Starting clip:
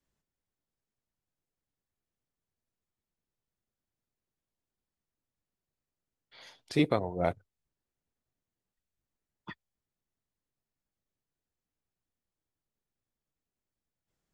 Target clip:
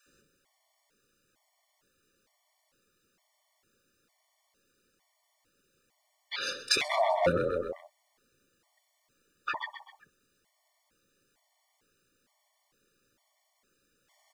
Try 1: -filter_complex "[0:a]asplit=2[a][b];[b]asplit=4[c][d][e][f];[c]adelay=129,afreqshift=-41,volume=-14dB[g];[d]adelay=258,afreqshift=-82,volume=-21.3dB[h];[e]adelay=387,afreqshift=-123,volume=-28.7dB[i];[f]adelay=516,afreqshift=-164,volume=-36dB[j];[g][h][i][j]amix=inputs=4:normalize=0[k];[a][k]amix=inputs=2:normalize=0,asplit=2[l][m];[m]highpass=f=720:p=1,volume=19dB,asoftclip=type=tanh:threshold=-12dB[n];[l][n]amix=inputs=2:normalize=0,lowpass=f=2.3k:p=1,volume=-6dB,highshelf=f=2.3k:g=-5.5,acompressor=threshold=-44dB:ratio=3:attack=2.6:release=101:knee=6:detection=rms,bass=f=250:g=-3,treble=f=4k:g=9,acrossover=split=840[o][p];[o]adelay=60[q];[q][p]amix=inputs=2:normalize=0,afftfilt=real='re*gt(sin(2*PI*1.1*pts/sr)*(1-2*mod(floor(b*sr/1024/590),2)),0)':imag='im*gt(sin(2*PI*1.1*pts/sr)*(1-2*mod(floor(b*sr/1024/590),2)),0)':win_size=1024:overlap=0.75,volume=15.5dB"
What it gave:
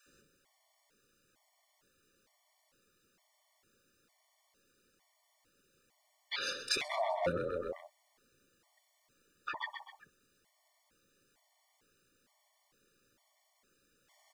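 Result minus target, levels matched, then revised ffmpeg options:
compressor: peak gain reduction +7.5 dB
-filter_complex "[0:a]asplit=2[a][b];[b]asplit=4[c][d][e][f];[c]adelay=129,afreqshift=-41,volume=-14dB[g];[d]adelay=258,afreqshift=-82,volume=-21.3dB[h];[e]adelay=387,afreqshift=-123,volume=-28.7dB[i];[f]adelay=516,afreqshift=-164,volume=-36dB[j];[g][h][i][j]amix=inputs=4:normalize=0[k];[a][k]amix=inputs=2:normalize=0,asplit=2[l][m];[m]highpass=f=720:p=1,volume=19dB,asoftclip=type=tanh:threshold=-12dB[n];[l][n]amix=inputs=2:normalize=0,lowpass=f=2.3k:p=1,volume=-6dB,highshelf=f=2.3k:g=-5.5,acompressor=threshold=-33dB:ratio=3:attack=2.6:release=101:knee=6:detection=rms,bass=f=250:g=-3,treble=f=4k:g=9,acrossover=split=840[o][p];[o]adelay=60[q];[q][p]amix=inputs=2:normalize=0,afftfilt=real='re*gt(sin(2*PI*1.1*pts/sr)*(1-2*mod(floor(b*sr/1024/590),2)),0)':imag='im*gt(sin(2*PI*1.1*pts/sr)*(1-2*mod(floor(b*sr/1024/590),2)),0)':win_size=1024:overlap=0.75,volume=15.5dB"

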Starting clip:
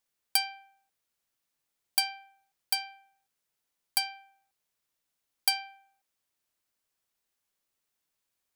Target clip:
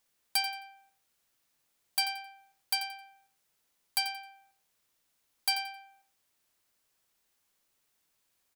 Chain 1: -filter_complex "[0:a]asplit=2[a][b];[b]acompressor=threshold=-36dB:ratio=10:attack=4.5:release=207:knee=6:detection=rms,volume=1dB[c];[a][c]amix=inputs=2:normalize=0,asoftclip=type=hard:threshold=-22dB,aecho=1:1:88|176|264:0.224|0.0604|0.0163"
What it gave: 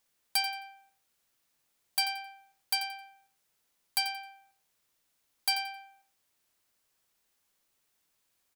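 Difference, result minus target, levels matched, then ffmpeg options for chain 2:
compressor: peak gain reduction -10 dB
-filter_complex "[0:a]asplit=2[a][b];[b]acompressor=threshold=-47dB:ratio=10:attack=4.5:release=207:knee=6:detection=rms,volume=1dB[c];[a][c]amix=inputs=2:normalize=0,asoftclip=type=hard:threshold=-22dB,aecho=1:1:88|176|264:0.224|0.0604|0.0163"

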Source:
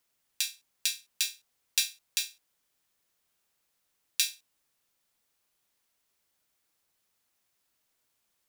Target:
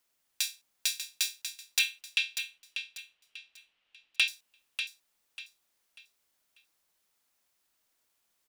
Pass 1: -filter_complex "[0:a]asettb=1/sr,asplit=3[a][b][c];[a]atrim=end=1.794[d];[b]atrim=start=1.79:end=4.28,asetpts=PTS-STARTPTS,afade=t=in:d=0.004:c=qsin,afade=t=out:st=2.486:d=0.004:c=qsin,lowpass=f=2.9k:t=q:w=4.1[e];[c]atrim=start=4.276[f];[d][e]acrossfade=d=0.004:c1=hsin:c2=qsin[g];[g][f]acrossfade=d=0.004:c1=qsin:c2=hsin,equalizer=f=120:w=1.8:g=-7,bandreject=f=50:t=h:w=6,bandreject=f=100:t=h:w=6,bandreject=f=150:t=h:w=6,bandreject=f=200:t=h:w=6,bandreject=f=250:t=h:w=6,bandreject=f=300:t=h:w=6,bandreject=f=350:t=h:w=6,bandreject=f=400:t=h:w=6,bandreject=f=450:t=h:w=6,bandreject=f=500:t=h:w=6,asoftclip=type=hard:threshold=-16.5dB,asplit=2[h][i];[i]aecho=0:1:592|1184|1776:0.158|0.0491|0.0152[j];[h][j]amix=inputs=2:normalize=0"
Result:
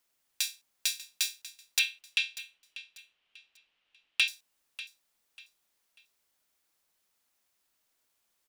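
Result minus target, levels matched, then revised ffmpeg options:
echo-to-direct -7.5 dB
-filter_complex "[0:a]asettb=1/sr,asplit=3[a][b][c];[a]atrim=end=1.794[d];[b]atrim=start=1.79:end=4.28,asetpts=PTS-STARTPTS,afade=t=in:d=0.004:c=qsin,afade=t=out:st=2.486:d=0.004:c=qsin,lowpass=f=2.9k:t=q:w=4.1[e];[c]atrim=start=4.276[f];[d][e]acrossfade=d=0.004:c1=hsin:c2=qsin[g];[g][f]acrossfade=d=0.004:c1=qsin:c2=hsin,equalizer=f=120:w=1.8:g=-7,bandreject=f=50:t=h:w=6,bandreject=f=100:t=h:w=6,bandreject=f=150:t=h:w=6,bandreject=f=200:t=h:w=6,bandreject=f=250:t=h:w=6,bandreject=f=300:t=h:w=6,bandreject=f=350:t=h:w=6,bandreject=f=400:t=h:w=6,bandreject=f=450:t=h:w=6,bandreject=f=500:t=h:w=6,asoftclip=type=hard:threshold=-16.5dB,asplit=2[h][i];[i]aecho=0:1:592|1184|1776|2368:0.376|0.117|0.0361|0.0112[j];[h][j]amix=inputs=2:normalize=0"

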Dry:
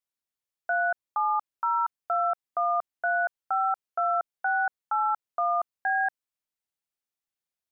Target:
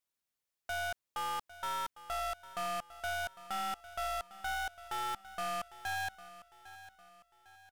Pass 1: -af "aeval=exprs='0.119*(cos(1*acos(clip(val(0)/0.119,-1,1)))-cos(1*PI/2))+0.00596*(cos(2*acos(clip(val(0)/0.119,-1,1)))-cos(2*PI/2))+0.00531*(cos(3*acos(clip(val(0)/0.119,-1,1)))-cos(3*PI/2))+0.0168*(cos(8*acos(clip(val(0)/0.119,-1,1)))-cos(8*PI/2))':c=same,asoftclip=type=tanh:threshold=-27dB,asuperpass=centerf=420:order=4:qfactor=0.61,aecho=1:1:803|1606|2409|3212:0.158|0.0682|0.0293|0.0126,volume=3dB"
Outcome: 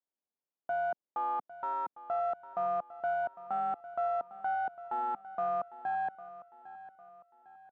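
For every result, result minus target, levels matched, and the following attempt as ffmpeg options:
500 Hz band +4.5 dB; soft clip: distortion -6 dB
-af "aeval=exprs='0.119*(cos(1*acos(clip(val(0)/0.119,-1,1)))-cos(1*PI/2))+0.00596*(cos(2*acos(clip(val(0)/0.119,-1,1)))-cos(2*PI/2))+0.00531*(cos(3*acos(clip(val(0)/0.119,-1,1)))-cos(3*PI/2))+0.0168*(cos(8*acos(clip(val(0)/0.119,-1,1)))-cos(8*PI/2))':c=same,asoftclip=type=tanh:threshold=-27dB,aecho=1:1:803|1606|2409|3212:0.158|0.0682|0.0293|0.0126,volume=3dB"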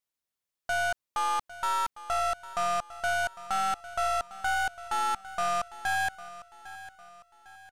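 soft clip: distortion -6 dB
-af "aeval=exprs='0.119*(cos(1*acos(clip(val(0)/0.119,-1,1)))-cos(1*PI/2))+0.00596*(cos(2*acos(clip(val(0)/0.119,-1,1)))-cos(2*PI/2))+0.00531*(cos(3*acos(clip(val(0)/0.119,-1,1)))-cos(3*PI/2))+0.0168*(cos(8*acos(clip(val(0)/0.119,-1,1)))-cos(8*PI/2))':c=same,asoftclip=type=tanh:threshold=-37dB,aecho=1:1:803|1606|2409|3212:0.158|0.0682|0.0293|0.0126,volume=3dB"

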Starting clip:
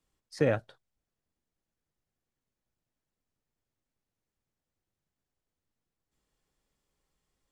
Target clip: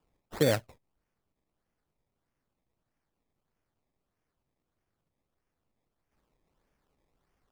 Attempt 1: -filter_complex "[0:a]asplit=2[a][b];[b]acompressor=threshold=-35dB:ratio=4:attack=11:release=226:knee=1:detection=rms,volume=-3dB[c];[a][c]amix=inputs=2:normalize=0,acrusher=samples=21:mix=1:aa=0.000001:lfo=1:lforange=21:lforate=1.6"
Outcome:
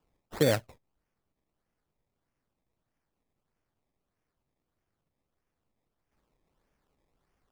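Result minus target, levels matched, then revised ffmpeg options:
compressor: peak gain reduction -5 dB
-filter_complex "[0:a]asplit=2[a][b];[b]acompressor=threshold=-42dB:ratio=4:attack=11:release=226:knee=1:detection=rms,volume=-3dB[c];[a][c]amix=inputs=2:normalize=0,acrusher=samples=21:mix=1:aa=0.000001:lfo=1:lforange=21:lforate=1.6"

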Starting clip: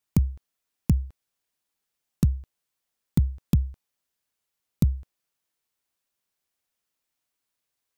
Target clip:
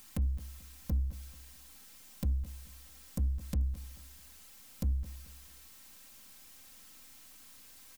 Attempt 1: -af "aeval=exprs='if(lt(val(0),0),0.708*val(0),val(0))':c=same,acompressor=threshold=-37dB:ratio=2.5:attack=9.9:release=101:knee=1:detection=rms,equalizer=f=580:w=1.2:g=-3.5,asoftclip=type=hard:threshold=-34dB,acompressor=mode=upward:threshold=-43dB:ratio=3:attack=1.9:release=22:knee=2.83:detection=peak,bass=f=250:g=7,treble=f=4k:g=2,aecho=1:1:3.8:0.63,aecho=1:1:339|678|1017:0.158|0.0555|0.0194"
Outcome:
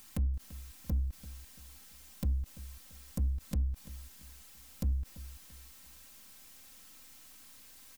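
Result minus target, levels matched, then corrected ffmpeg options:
echo 0.12 s late
-af "aeval=exprs='if(lt(val(0),0),0.708*val(0),val(0))':c=same,acompressor=threshold=-37dB:ratio=2.5:attack=9.9:release=101:knee=1:detection=rms,equalizer=f=580:w=1.2:g=-3.5,asoftclip=type=hard:threshold=-34dB,acompressor=mode=upward:threshold=-43dB:ratio=3:attack=1.9:release=22:knee=2.83:detection=peak,bass=f=250:g=7,treble=f=4k:g=2,aecho=1:1:3.8:0.63,aecho=1:1:219|438|657:0.158|0.0555|0.0194"

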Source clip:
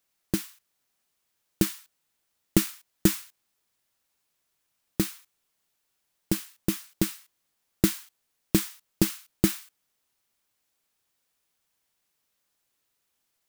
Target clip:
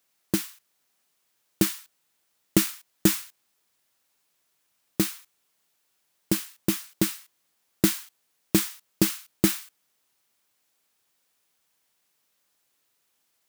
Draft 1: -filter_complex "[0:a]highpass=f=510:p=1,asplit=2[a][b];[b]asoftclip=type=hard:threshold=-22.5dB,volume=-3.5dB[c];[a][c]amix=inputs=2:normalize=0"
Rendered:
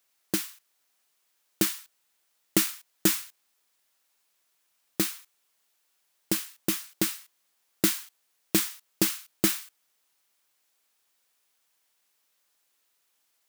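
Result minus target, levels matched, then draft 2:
125 Hz band -6.0 dB
-filter_complex "[0:a]highpass=f=140:p=1,asplit=2[a][b];[b]asoftclip=type=hard:threshold=-22.5dB,volume=-3.5dB[c];[a][c]amix=inputs=2:normalize=0"

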